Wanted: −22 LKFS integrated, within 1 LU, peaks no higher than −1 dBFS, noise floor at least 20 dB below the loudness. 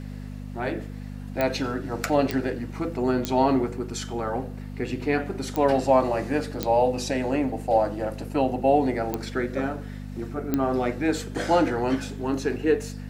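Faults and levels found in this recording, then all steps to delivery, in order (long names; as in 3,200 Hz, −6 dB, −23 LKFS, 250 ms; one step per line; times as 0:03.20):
number of clicks 7; mains hum 50 Hz; hum harmonics up to 250 Hz; level of the hum −33 dBFS; integrated loudness −25.5 LKFS; sample peak −7.0 dBFS; target loudness −22.0 LKFS
→ click removal
hum removal 50 Hz, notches 5
level +3.5 dB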